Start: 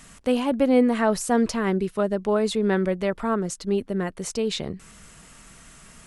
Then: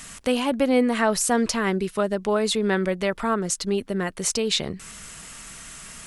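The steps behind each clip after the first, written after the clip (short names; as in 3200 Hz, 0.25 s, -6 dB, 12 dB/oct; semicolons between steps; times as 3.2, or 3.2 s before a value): in parallel at 0 dB: compressor, threshold -29 dBFS, peak gain reduction 15 dB; on the sum: tilt shelf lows -4 dB, about 1200 Hz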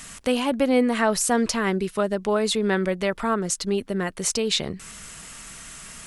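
nothing audible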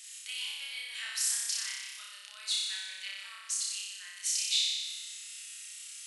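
ladder high-pass 2300 Hz, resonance 25%; flutter echo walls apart 5.2 m, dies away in 1.4 s; gain -3.5 dB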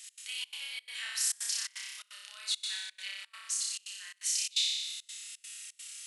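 step gate "x.xxx.xxx.xxxx" 171 bpm -24 dB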